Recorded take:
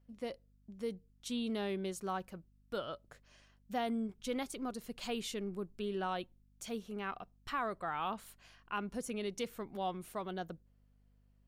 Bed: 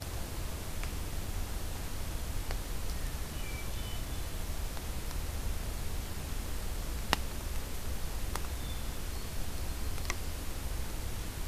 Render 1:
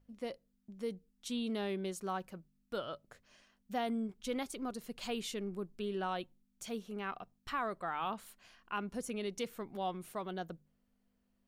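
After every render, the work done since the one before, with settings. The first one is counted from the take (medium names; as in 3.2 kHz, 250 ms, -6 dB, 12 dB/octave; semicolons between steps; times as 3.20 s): de-hum 50 Hz, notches 3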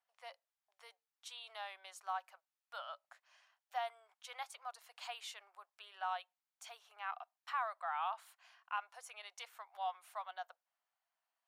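steep high-pass 720 Hz 48 dB/octave; tilt EQ -2.5 dB/octave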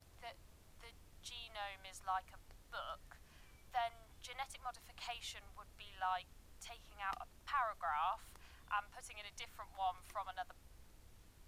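add bed -25 dB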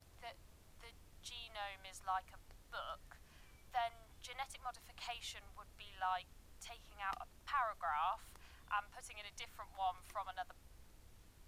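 no audible change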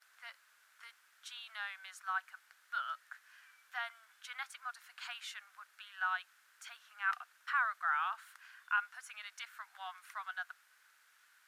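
resonant high-pass 1.5 kHz, resonance Q 4.8; short-mantissa float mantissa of 8-bit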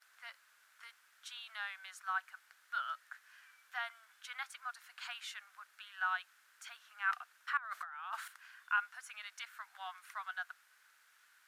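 7.57–8.28 s: compressor with a negative ratio -45 dBFS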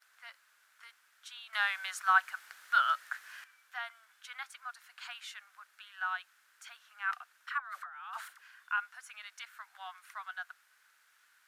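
1.53–3.44 s: gain +11.5 dB; 7.49–8.48 s: phase dispersion lows, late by 70 ms, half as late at 710 Hz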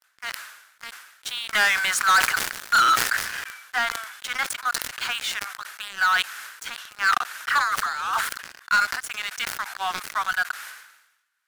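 waveshaping leveller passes 5; decay stretcher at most 64 dB/s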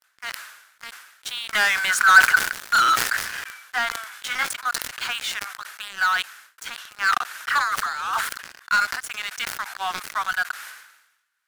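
1.89–2.54 s: peaking EQ 1.5 kHz +10 dB 0.24 oct; 4.10–4.50 s: doubling 19 ms -3 dB; 6.06–6.58 s: fade out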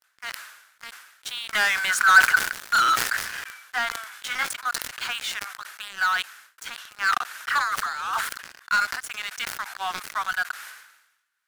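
trim -2 dB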